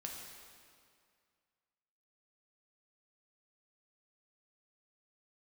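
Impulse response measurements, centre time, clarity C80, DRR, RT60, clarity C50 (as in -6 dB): 84 ms, 3.0 dB, -1.0 dB, 2.2 s, 2.0 dB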